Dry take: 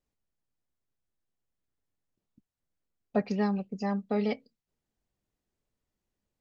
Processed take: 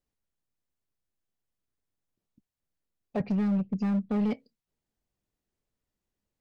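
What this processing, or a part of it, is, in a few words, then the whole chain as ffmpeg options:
limiter into clipper: -filter_complex "[0:a]asettb=1/sr,asplit=3[s0][s1][s2];[s0]atrim=end=3.204[s3];[s1]atrim=start=3.2:end=4.34,asetpts=PTS-STARTPTS,afade=t=in:d=0.004:c=qsin,afade=t=out:st=1.136:d=0.004:c=qsin,bass=f=250:g=14,treble=f=4000:g=-8[s4];[s2]atrim=start=4.336[s5];[s3][s4]acrossfade=d=0.004:c1=hsin:c2=qsin[s6];[s6][s5]acrossfade=d=0.004:c1=qsin:c2=hsin,alimiter=limit=0.141:level=0:latency=1:release=114,asoftclip=type=hard:threshold=0.0841,volume=0.841"

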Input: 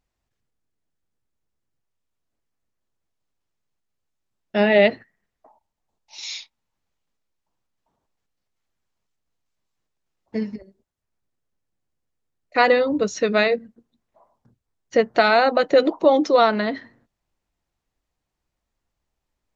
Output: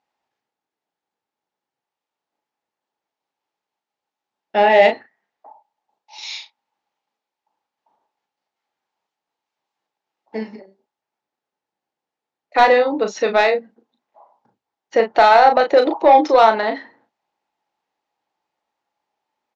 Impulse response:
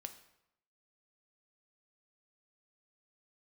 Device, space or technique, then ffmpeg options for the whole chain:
intercom: -filter_complex "[0:a]highpass=330,lowpass=4700,equalizer=f=840:t=o:w=0.28:g=12,asoftclip=type=tanh:threshold=0.501,asplit=2[s0][s1];[s1]adelay=36,volume=0.447[s2];[s0][s2]amix=inputs=2:normalize=0,volume=1.41"

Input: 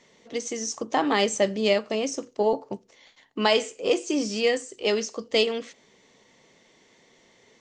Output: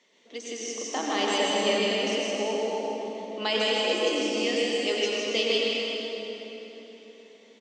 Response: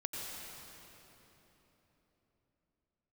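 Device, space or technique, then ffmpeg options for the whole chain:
stadium PA: -filter_complex "[0:a]highpass=f=210:w=0.5412,highpass=f=210:w=1.3066,equalizer=f=3100:t=o:w=1.1:g=6,aecho=1:1:157.4|247.8:0.708|0.282[s0];[1:a]atrim=start_sample=2205[s1];[s0][s1]afir=irnorm=-1:irlink=0,volume=0.501"

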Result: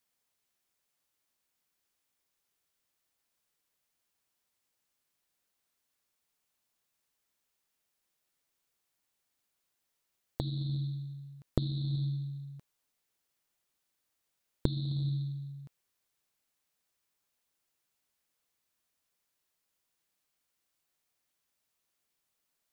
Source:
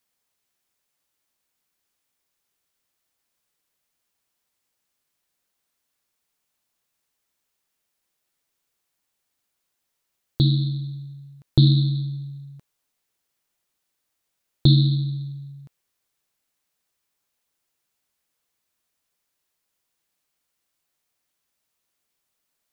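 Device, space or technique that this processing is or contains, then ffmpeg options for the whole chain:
de-esser from a sidechain: -filter_complex "[0:a]asplit=2[s0][s1];[s1]highpass=4000,apad=whole_len=1002188[s2];[s0][s2]sidechaincompress=threshold=0.00398:ratio=4:attack=4.5:release=39,volume=0.631"

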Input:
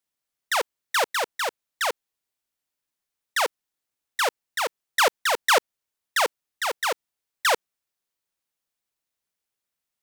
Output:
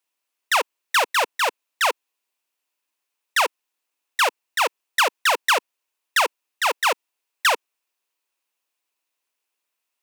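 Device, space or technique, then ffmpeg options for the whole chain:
laptop speaker: -af "highpass=f=270:w=0.5412,highpass=f=270:w=1.3066,equalizer=f=1000:t=o:w=0.32:g=6,equalizer=f=2600:t=o:w=0.32:g=7.5,alimiter=limit=0.237:level=0:latency=1:release=20,volume=1.5"

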